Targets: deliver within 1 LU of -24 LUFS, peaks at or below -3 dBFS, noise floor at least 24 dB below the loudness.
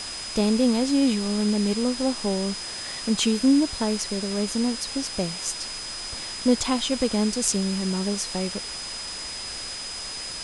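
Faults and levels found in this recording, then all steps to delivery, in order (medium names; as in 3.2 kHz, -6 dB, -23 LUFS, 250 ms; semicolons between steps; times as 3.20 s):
steady tone 5 kHz; tone level -34 dBFS; noise floor -34 dBFS; noise floor target -49 dBFS; loudness -25.0 LUFS; peak level -4.5 dBFS; loudness target -24.0 LUFS
-> band-stop 5 kHz, Q 30; noise print and reduce 15 dB; trim +1 dB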